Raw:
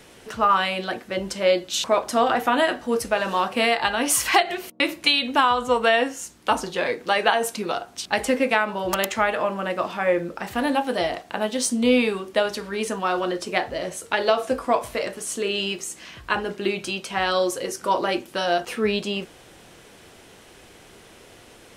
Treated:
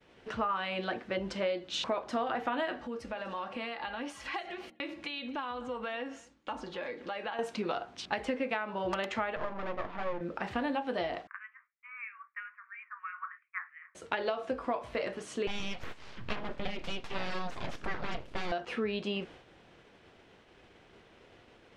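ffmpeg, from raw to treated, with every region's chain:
-filter_complex "[0:a]asettb=1/sr,asplit=3[a][b][c];[a]atrim=end=2.814[d];[b]atrim=start=2.81:end=7.39,asetpts=PTS-STARTPTS,afade=t=in:d=0.004:c=qsin,afade=t=out:st=4.576:d=0.004:c=qsin,aecho=1:1:3.6:0.35,atrim=end_sample=201978,acompressor=threshold=-37dB:ratio=2.5:attack=3.2:release=140:knee=1:detection=peak,aecho=1:1:250:0.0944,atrim=end_sample=201978[e];[c]atrim=start=7.386[f];[d][e]acrossfade=d=0.004:c1=hsin:c2=qsin[g];[g][f]acrossfade=d=0.004:c1=qsin:c2=hsin,asettb=1/sr,asplit=3[h][i][j];[h]atrim=end=9.364[k];[i]atrim=start=9.36:end=10.21,asetpts=PTS-STARTPTS,afade=t=in:d=0.004:c=qsin,afade=t=out:st=0.846:d=0.004:c=qsin,lowpass=1.7k,aeval=exprs='max(val(0),0)':c=same[l];[j]atrim=start=10.206[m];[k][l]acrossfade=d=0.004:c1=hsin:c2=qsin[n];[n][m]acrossfade=d=0.004:c1=qsin:c2=hsin,asettb=1/sr,asplit=3[o][p][q];[o]atrim=end=11.274[r];[p]atrim=start=11.27:end=13.95,asetpts=PTS-STARTPTS,afade=t=in:d=0.004:c=qsin,afade=t=out:st=2.676:d=0.004:c=qsin,asuperpass=centerf=1600:order=12:qfactor=1.3,acrossover=split=1800[s][t];[s]aeval=exprs='val(0)*(1-1/2+1/2*cos(2*PI*3*n/s))':c=same[u];[t]aeval=exprs='val(0)*(1-1/2-1/2*cos(2*PI*3*n/s))':c=same[v];[u][v]amix=inputs=2:normalize=0[w];[q]atrim=start=13.946[x];[r][w]acrossfade=d=0.004:c1=hsin:c2=qsin[y];[y][x]acrossfade=d=0.004:c1=qsin:c2=hsin,asettb=1/sr,asplit=3[z][aa][ab];[z]atrim=end=15.474[ac];[aa]atrim=start=15.47:end=18.52,asetpts=PTS-STARTPTS,afade=t=in:d=0.004:c=qsin,afade=t=out:st=3.046:d=0.004:c=qsin,asubboost=boost=8.5:cutoff=180,aeval=exprs='abs(val(0))':c=same[ad];[ab]atrim=start=18.516[ae];[ac][ad]acrossfade=d=0.004:c1=hsin:c2=qsin[af];[af][ae]acrossfade=d=0.004:c1=qsin:c2=hsin,lowpass=3.4k,agate=range=-33dB:threshold=-43dB:ratio=3:detection=peak,acompressor=threshold=-26dB:ratio=6,volume=-3.5dB"

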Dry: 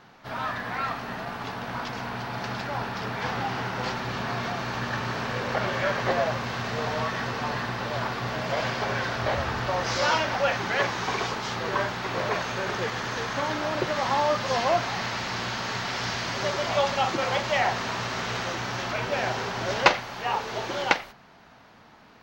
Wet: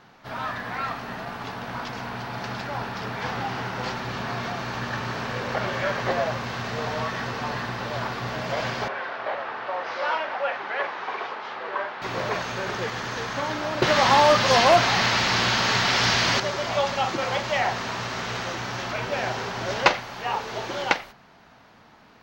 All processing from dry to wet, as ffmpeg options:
-filter_complex "[0:a]asettb=1/sr,asplit=3[a][b][c];[a]atrim=end=8.884[d];[b]atrim=start=8.88:end=12.02,asetpts=PTS-STARTPTS,afade=t=in:d=0.004:c=qsin,afade=t=out:st=3.136:d=0.004:c=qsin,highpass=510,lowpass=3.7k,aemphasis=mode=reproduction:type=75kf[e];[c]atrim=start=12.016[f];[d][e]acrossfade=d=0.004:c1=hsin:c2=qsin[g];[g][f]acrossfade=d=0.004:c1=qsin:c2=hsin,asettb=1/sr,asplit=3[h][i][j];[h]atrim=end=13.824[k];[i]atrim=start=13.82:end=16.4,asetpts=PTS-STARTPTS,afade=t=in:d=0.004:c=qsin,afade=t=out:st=2.576:d=0.004:c=qsin,equalizer=f=3.6k:w=0.63:g=4,acontrast=79,asoftclip=type=hard:threshold=-10dB[l];[j]atrim=start=16.396[m];[k][l]acrossfade=d=0.004:c1=hsin:c2=qsin[n];[n][m]acrossfade=d=0.004:c1=qsin:c2=hsin"

